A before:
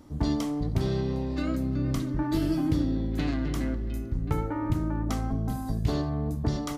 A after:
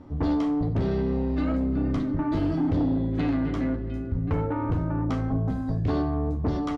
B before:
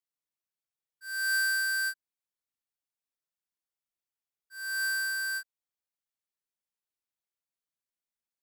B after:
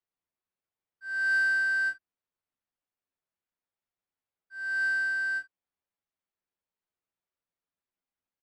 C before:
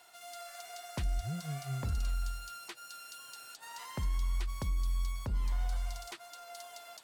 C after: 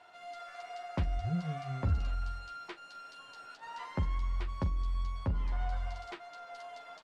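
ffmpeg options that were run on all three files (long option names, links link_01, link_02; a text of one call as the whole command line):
ffmpeg -i in.wav -af "aecho=1:1:11|44:0.596|0.188,adynamicsmooth=sensitivity=0.5:basefreq=2600,aeval=exprs='0.211*sin(PI/2*2*val(0)/0.211)':channel_layout=same,volume=-6dB" out.wav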